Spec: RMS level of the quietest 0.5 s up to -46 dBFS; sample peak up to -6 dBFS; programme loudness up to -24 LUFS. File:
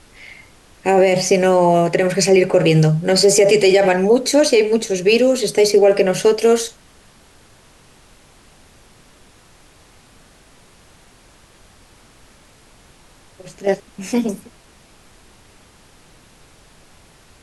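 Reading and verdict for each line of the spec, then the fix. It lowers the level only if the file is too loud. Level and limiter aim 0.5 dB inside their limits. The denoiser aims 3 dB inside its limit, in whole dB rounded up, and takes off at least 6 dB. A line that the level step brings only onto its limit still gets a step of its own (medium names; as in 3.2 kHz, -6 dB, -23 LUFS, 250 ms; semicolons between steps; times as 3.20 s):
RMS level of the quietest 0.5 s -49 dBFS: pass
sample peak -4.0 dBFS: fail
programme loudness -15.0 LUFS: fail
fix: trim -9.5 dB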